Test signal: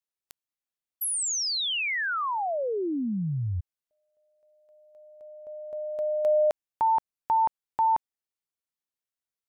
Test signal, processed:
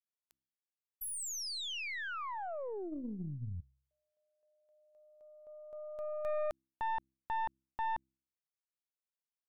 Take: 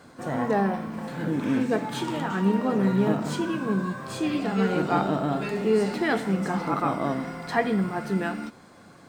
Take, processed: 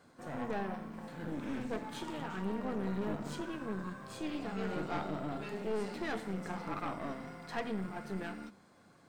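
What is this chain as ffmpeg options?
-af "bandreject=f=65.87:t=h:w=4,bandreject=f=131.74:t=h:w=4,bandreject=f=197.61:t=h:w=4,bandreject=f=263.48:t=h:w=4,bandreject=f=329.35:t=h:w=4,aeval=exprs='(tanh(12.6*val(0)+0.65)-tanh(0.65))/12.6':c=same,volume=-8.5dB"

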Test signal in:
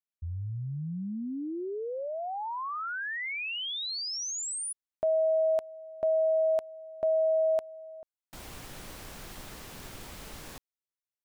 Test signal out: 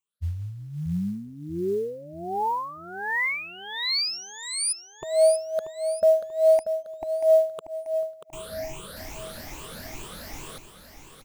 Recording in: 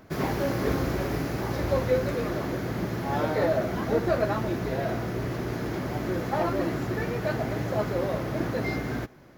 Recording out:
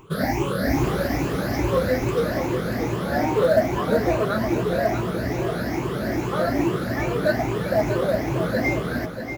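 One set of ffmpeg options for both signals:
-af "afftfilt=real='re*pow(10,21/40*sin(2*PI*(0.69*log(max(b,1)*sr/1024/100)/log(2)-(2.4)*(pts-256)/sr)))':imag='im*pow(10,21/40*sin(2*PI*(0.69*log(max(b,1)*sr/1024/100)/log(2)-(2.4)*(pts-256)/sr)))':win_size=1024:overlap=0.75,aecho=1:1:636|1272|1908|2544|3180:0.355|0.145|0.0596|0.0245|0.01,acrusher=bits=8:mode=log:mix=0:aa=0.000001"

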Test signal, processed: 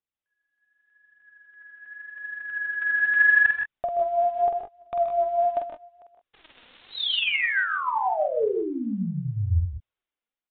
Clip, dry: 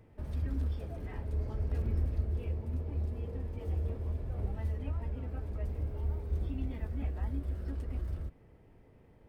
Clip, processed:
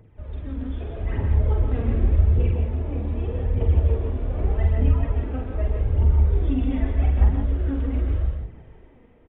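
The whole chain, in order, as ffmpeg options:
-af "dynaudnorm=f=230:g=7:m=9dB,aphaser=in_gain=1:out_gain=1:delay=4.4:decay=0.58:speed=0.83:type=triangular,aecho=1:1:47|128|155|173|194:0.596|0.316|0.398|0.398|0.133,aresample=8000,aresample=44100"

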